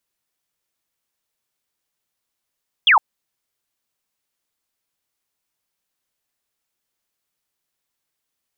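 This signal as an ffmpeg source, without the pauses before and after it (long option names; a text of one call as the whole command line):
ffmpeg -f lavfi -i "aevalsrc='0.355*clip(t/0.002,0,1)*clip((0.11-t)/0.002,0,1)*sin(2*PI*3500*0.11/log(790/3500)*(exp(log(790/3500)*t/0.11)-1))':duration=0.11:sample_rate=44100" out.wav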